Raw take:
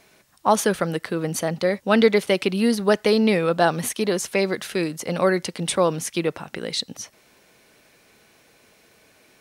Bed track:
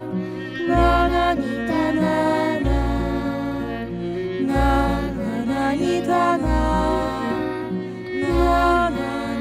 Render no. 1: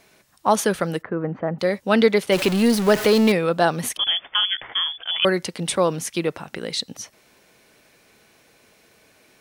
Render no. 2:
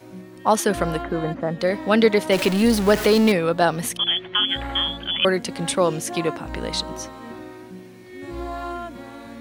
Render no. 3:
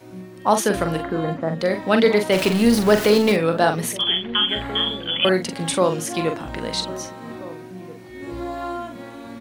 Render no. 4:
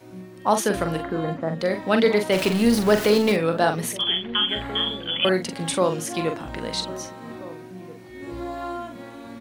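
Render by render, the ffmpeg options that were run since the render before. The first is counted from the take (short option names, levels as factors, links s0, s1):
-filter_complex "[0:a]asplit=3[s0][s1][s2];[s0]afade=t=out:st=1.01:d=0.02[s3];[s1]lowpass=f=1700:w=0.5412,lowpass=f=1700:w=1.3066,afade=t=in:st=1.01:d=0.02,afade=t=out:st=1.58:d=0.02[s4];[s2]afade=t=in:st=1.58:d=0.02[s5];[s3][s4][s5]amix=inputs=3:normalize=0,asettb=1/sr,asplit=3[s6][s7][s8];[s6]atrim=end=2.324[s9];[s7]atrim=start=2.32:end=3.32,asetpts=PTS-STARTPTS,afade=t=in:d=0.004:c=qsin,afade=t=out:st=0.996:d=0.004:c=qsin,aeval=exprs='val(0)+0.5*0.0794*sgn(val(0))':c=same[s10];[s8]atrim=start=3.316[s11];[s9][s10]acrossfade=d=0.004:c1=hsin:c2=qsin[s12];[s12][s11]acrossfade=d=0.004:c1=qsin:c2=hsin,asettb=1/sr,asplit=3[s13][s14][s15];[s13]atrim=end=3.974[s16];[s14]atrim=start=3.97:end=5.25,asetpts=PTS-STARTPTS,afade=t=in:d=0.004:c=qsin,afade=t=out:st=1.276:d=0.004:c=qsin,lowpass=f=3100:t=q:w=0.5098,lowpass=f=3100:t=q:w=0.6013,lowpass=f=3100:t=q:w=0.9,lowpass=f=3100:t=q:w=2.563,afreqshift=-3600[s17];[s15]atrim=start=5.246[s18];[s16][s17]acrossfade=d=0.004:c1=hsin:c2=qsin[s19];[s19][s18]acrossfade=d=0.004:c1=qsin:c2=hsin"
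-filter_complex "[1:a]volume=0.211[s0];[0:a][s0]amix=inputs=2:normalize=0"
-filter_complex "[0:a]asplit=2[s0][s1];[s1]adelay=43,volume=0.447[s2];[s0][s2]amix=inputs=2:normalize=0,asplit=2[s3][s4];[s4]adelay=1633,volume=0.141,highshelf=f=4000:g=-36.7[s5];[s3][s5]amix=inputs=2:normalize=0"
-af "volume=0.75"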